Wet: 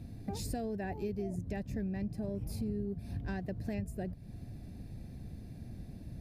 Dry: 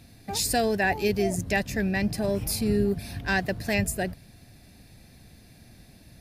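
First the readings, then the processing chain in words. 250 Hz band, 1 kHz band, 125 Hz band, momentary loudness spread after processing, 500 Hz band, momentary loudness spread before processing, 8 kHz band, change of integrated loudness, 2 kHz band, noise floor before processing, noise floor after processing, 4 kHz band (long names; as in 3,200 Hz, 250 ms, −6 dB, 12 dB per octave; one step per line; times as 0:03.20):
−9.0 dB, −16.0 dB, −6.5 dB, 10 LU, −13.5 dB, 5 LU, −20.0 dB, −13.5 dB, −22.0 dB, −53 dBFS, −49 dBFS, −20.5 dB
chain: tilt shelving filter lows +9.5 dB, about 710 Hz
downward compressor 5 to 1, threshold −34 dBFS, peak gain reduction 19 dB
level −2 dB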